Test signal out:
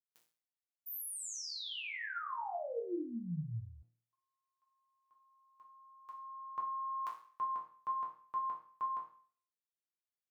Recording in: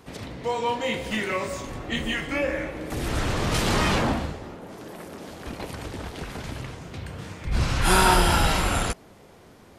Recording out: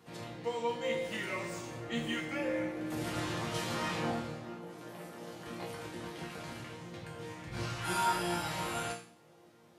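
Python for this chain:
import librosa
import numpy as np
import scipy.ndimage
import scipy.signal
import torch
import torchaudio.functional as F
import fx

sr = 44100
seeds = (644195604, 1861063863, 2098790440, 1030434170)

y = fx.resonator_bank(x, sr, root=46, chord='sus4', decay_s=0.48)
y = fx.rider(y, sr, range_db=4, speed_s=0.5)
y = scipy.signal.sosfilt(scipy.signal.butter(2, 94.0, 'highpass', fs=sr, output='sos'), y)
y = y * librosa.db_to_amplitude(5.5)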